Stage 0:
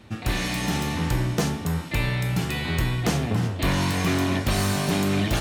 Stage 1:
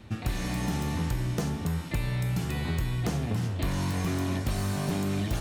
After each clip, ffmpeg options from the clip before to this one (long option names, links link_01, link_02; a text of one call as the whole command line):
ffmpeg -i in.wav -filter_complex "[0:a]lowshelf=frequency=140:gain=7,acrossover=split=1700|4900[link_01][link_02][link_03];[link_01]acompressor=threshold=-24dB:ratio=4[link_04];[link_02]acompressor=threshold=-45dB:ratio=4[link_05];[link_03]acompressor=threshold=-41dB:ratio=4[link_06];[link_04][link_05][link_06]amix=inputs=3:normalize=0,volume=-2.5dB" out.wav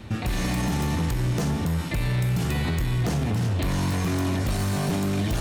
ffmpeg -i in.wav -af "alimiter=level_in=0.5dB:limit=-24dB:level=0:latency=1:release=29,volume=-0.5dB,asoftclip=type=hard:threshold=-28dB,volume=8dB" out.wav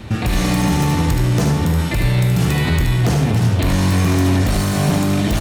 ffmpeg -i in.wav -af "aecho=1:1:75:0.531,volume=7.5dB" out.wav